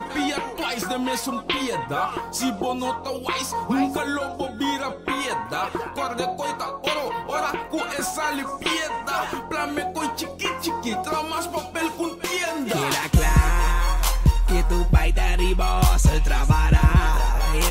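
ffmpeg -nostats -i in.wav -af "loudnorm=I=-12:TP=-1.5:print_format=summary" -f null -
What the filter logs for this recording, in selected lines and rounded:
Input Integrated:    -23.1 LUFS
Input True Peak:      -4.4 dBTP
Input LRA:             6.3 LU
Input Threshold:     -33.1 LUFS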